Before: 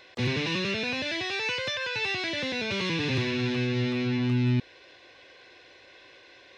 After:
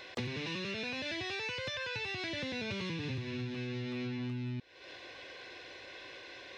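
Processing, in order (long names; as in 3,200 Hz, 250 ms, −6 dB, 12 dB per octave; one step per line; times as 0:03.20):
0:01.10–0:03.55: low-shelf EQ 160 Hz +10.5 dB
downward compressor 12 to 1, threshold −39 dBFS, peak gain reduction 21 dB
level +3.5 dB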